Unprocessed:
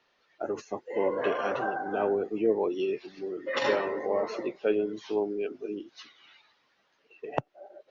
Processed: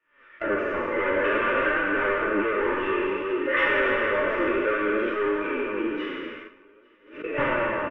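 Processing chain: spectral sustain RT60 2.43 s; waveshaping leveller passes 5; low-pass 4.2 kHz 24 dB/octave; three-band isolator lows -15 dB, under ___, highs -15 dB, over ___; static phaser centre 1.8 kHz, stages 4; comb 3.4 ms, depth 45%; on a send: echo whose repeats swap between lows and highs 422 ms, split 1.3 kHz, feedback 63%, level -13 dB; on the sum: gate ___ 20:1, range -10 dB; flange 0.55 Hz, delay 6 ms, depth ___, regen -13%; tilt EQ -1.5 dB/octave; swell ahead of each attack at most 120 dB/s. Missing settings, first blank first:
440 Hz, 3.1 kHz, -35 dBFS, 6.5 ms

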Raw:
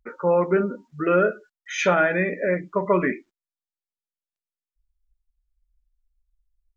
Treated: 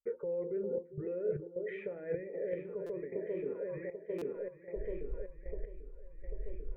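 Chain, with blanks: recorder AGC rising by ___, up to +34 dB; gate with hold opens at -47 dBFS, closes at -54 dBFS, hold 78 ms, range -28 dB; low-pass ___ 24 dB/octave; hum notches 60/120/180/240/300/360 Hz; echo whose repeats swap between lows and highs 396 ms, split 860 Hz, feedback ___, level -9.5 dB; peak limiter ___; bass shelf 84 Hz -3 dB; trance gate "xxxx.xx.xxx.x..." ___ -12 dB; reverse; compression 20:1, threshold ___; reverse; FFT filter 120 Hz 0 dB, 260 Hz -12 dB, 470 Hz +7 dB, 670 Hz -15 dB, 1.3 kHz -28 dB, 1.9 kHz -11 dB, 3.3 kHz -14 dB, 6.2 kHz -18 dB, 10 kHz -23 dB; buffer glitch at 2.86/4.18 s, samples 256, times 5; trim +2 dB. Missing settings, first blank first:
51 dB/s, 2.1 kHz, 76%, -15 dBFS, 77 bpm, -34 dBFS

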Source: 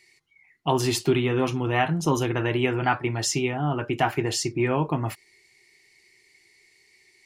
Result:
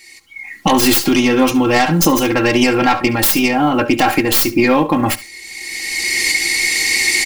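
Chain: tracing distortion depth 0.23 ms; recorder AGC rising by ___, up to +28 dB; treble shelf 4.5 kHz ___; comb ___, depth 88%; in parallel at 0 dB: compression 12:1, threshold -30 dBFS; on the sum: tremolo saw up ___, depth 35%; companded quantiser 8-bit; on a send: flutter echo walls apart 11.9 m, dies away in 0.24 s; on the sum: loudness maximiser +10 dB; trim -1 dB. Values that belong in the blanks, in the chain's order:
21 dB/s, +7 dB, 3.7 ms, 0.95 Hz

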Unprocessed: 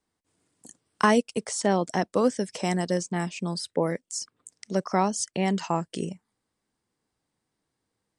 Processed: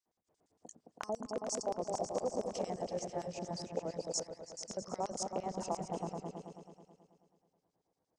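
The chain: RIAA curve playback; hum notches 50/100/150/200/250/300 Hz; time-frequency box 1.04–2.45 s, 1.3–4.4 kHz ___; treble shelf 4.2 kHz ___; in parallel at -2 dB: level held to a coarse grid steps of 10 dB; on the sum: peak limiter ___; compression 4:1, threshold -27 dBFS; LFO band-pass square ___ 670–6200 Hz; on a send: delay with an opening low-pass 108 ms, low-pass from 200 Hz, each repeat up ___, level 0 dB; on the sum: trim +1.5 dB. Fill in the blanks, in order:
-25 dB, +3.5 dB, -14.5 dBFS, 8.7 Hz, 2 oct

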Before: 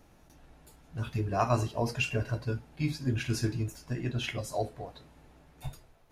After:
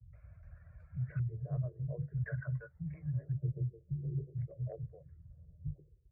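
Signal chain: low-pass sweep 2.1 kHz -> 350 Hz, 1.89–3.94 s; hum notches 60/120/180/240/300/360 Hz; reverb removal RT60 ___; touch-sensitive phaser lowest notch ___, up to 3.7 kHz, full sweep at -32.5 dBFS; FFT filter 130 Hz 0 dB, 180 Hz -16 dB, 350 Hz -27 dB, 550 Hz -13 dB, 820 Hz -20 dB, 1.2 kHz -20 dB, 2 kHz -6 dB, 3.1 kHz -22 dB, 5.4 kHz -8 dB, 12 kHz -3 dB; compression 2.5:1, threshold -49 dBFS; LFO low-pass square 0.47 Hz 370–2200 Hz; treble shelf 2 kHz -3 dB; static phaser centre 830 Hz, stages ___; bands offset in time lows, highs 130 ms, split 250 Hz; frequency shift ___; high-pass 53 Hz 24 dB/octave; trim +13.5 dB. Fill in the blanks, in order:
0.64 s, 280 Hz, 6, +17 Hz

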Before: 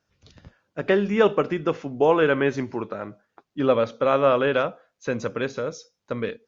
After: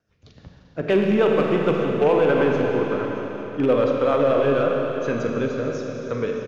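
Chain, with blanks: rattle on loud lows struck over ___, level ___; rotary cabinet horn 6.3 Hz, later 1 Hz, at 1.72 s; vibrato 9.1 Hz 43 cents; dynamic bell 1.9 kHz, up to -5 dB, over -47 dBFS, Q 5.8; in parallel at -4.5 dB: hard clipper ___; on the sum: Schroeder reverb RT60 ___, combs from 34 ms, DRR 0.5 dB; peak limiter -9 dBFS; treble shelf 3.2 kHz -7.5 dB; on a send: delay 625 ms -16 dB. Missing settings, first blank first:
-27 dBFS, -20 dBFS, -22.5 dBFS, 3.8 s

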